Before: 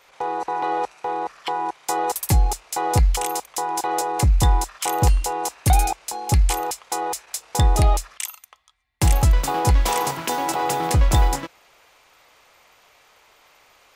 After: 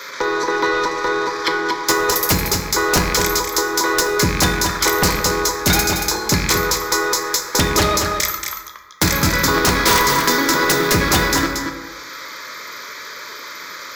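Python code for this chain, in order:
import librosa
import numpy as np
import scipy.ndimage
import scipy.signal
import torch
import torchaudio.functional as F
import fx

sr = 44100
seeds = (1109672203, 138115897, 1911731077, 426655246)

p1 = fx.rattle_buzz(x, sr, strikes_db=-19.0, level_db=-23.0)
p2 = scipy.signal.sosfilt(scipy.signal.butter(2, 250.0, 'highpass', fs=sr, output='sos'), p1)
p3 = fx.level_steps(p2, sr, step_db=22)
p4 = p2 + (p3 * librosa.db_to_amplitude(0.5))
p5 = fx.fixed_phaser(p4, sr, hz=2800.0, stages=6)
p6 = fx.fold_sine(p5, sr, drive_db=14, ceiling_db=-6.0)
p7 = p6 + fx.echo_single(p6, sr, ms=229, db=-8.0, dry=0)
p8 = fx.rev_plate(p7, sr, seeds[0], rt60_s=1.0, hf_ratio=0.5, predelay_ms=0, drr_db=4.5)
p9 = fx.band_squash(p8, sr, depth_pct=40)
y = p9 * librosa.db_to_amplitude(-4.0)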